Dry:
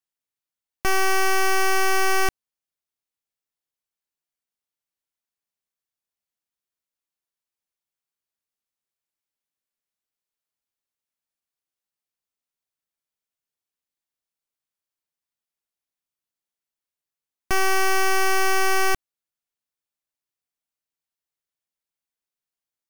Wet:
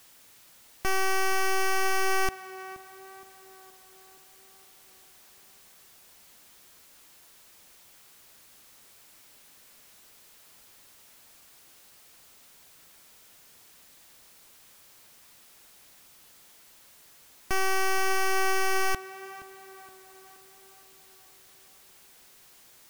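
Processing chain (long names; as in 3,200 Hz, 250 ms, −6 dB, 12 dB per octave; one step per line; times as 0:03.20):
converter with a step at zero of −41.5 dBFS
tape delay 471 ms, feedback 62%, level −12 dB, low-pass 2,200 Hz
level −6 dB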